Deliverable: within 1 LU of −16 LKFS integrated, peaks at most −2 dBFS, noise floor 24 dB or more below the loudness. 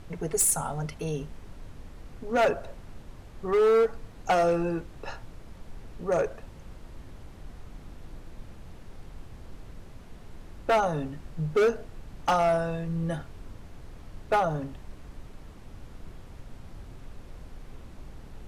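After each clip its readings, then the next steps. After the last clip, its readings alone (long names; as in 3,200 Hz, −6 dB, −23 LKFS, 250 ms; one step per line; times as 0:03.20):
share of clipped samples 1.2%; peaks flattened at −18.5 dBFS; background noise floor −47 dBFS; target noise floor −51 dBFS; integrated loudness −27.0 LKFS; sample peak −18.5 dBFS; target loudness −16.0 LKFS
→ clipped peaks rebuilt −18.5 dBFS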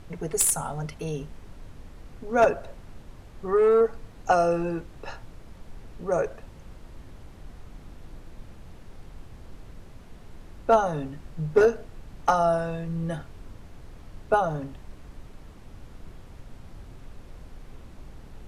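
share of clipped samples 0.0%; background noise floor −47 dBFS; target noise floor −50 dBFS
→ noise reduction from a noise print 6 dB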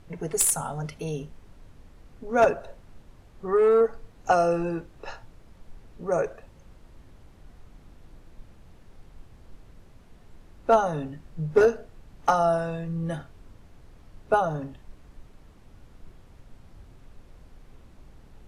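background noise floor −53 dBFS; integrated loudness −25.5 LKFS; sample peak −9.5 dBFS; target loudness −16.0 LKFS
→ level +9.5 dB
brickwall limiter −2 dBFS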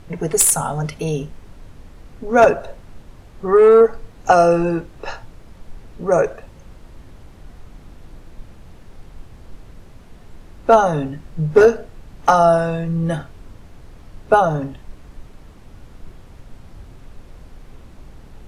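integrated loudness −16.5 LKFS; sample peak −2.0 dBFS; background noise floor −43 dBFS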